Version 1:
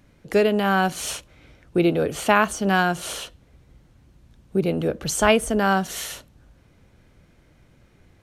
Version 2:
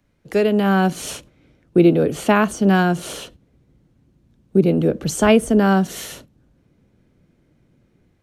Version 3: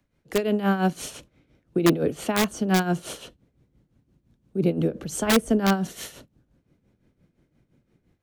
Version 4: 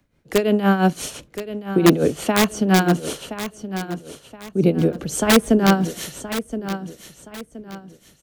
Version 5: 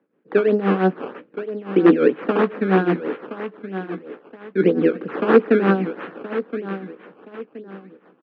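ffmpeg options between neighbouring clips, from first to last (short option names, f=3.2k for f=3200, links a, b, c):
-filter_complex "[0:a]agate=range=-8dB:threshold=-44dB:ratio=16:detection=peak,acrossover=split=130|430|5200[a][b][c][d];[b]dynaudnorm=f=350:g=3:m=11dB[e];[a][e][c][d]amix=inputs=4:normalize=0,volume=-1dB"
-filter_complex "[0:a]tremolo=f=5.8:d=0.72,acrossover=split=350|3900[a][b][c];[b]aeval=exprs='(mod(4.47*val(0)+1,2)-1)/4.47':c=same[d];[a][d][c]amix=inputs=3:normalize=0,volume=-3dB"
-af "aecho=1:1:1022|2044|3066:0.266|0.0878|0.029,volume=5.5dB"
-filter_complex "[0:a]acrusher=samples=16:mix=1:aa=0.000001:lfo=1:lforange=16:lforate=3.1,highpass=f=210:w=0.5412,highpass=f=210:w=1.3066,equalizer=f=320:t=q:w=4:g=3,equalizer=f=460:t=q:w=4:g=6,equalizer=f=660:t=q:w=4:g=-6,equalizer=f=940:t=q:w=4:g=-4,equalizer=f=2.1k:t=q:w=4:g=-5,lowpass=f=2.3k:w=0.5412,lowpass=f=2.3k:w=1.3066,asplit=2[a][b];[b]adelay=16,volume=-11.5dB[c];[a][c]amix=inputs=2:normalize=0"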